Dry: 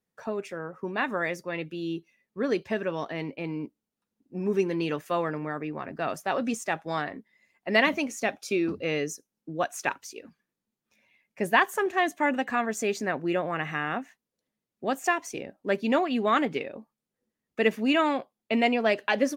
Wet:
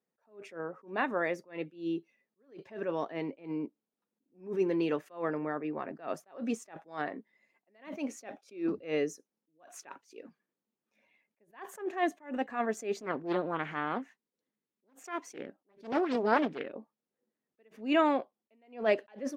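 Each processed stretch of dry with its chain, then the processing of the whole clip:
13.01–16.73 s: peaking EQ 650 Hz -7.5 dB 0.71 oct + loudspeaker Doppler distortion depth 0.85 ms
whole clip: high-pass 340 Hz 12 dB/octave; tilt EQ -3 dB/octave; attacks held to a fixed rise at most 180 dB/s; trim -2 dB

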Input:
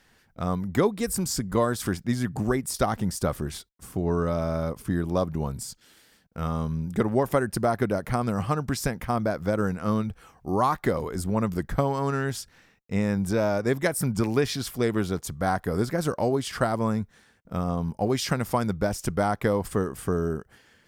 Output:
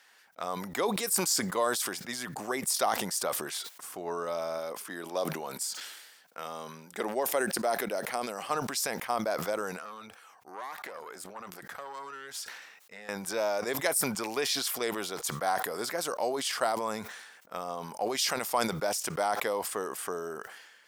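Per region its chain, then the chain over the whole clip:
4.58–8.50 s: high-pass 170 Hz + dynamic bell 1.1 kHz, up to -5 dB, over -41 dBFS, Q 1.7
9.76–13.09 s: valve stage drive 19 dB, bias 0.8 + compression 4:1, threshold -35 dBFS
whole clip: high-pass 760 Hz 12 dB/octave; dynamic bell 1.5 kHz, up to -7 dB, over -44 dBFS, Q 1.1; decay stretcher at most 48 dB/s; trim +2.5 dB

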